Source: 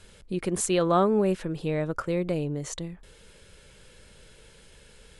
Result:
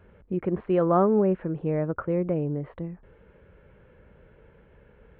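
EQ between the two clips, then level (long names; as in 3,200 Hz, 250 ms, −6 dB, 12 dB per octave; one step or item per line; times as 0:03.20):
Gaussian smoothing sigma 4.9 samples
high-pass filter 41 Hz
+2.0 dB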